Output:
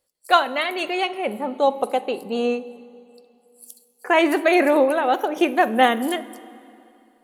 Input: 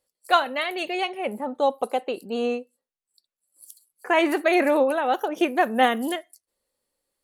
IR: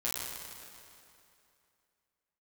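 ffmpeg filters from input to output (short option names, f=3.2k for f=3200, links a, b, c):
-filter_complex "[0:a]asplit=2[a][b];[1:a]atrim=start_sample=2205,lowshelf=f=330:g=12,adelay=45[c];[b][c]afir=irnorm=-1:irlink=0,volume=-22.5dB[d];[a][d]amix=inputs=2:normalize=0,volume=3dB"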